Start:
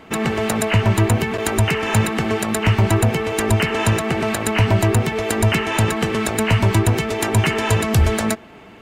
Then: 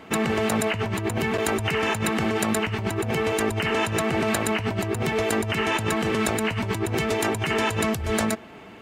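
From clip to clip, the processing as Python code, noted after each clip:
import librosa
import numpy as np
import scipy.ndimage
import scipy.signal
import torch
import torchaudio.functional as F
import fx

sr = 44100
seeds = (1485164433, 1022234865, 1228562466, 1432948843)

y = fx.highpass(x, sr, hz=63.0, slope=6)
y = fx.over_compress(y, sr, threshold_db=-21.0, ratio=-1.0)
y = y * 10.0 ** (-3.5 / 20.0)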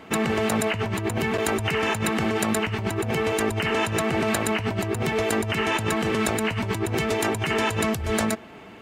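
y = x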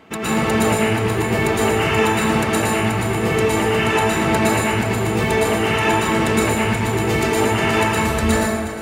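y = x + 10.0 ** (-13.0 / 20.0) * np.pad(x, (int(362 * sr / 1000.0), 0))[:len(x)]
y = fx.rev_plate(y, sr, seeds[0], rt60_s=1.5, hf_ratio=0.55, predelay_ms=100, drr_db=-9.0)
y = y * 10.0 ** (-3.0 / 20.0)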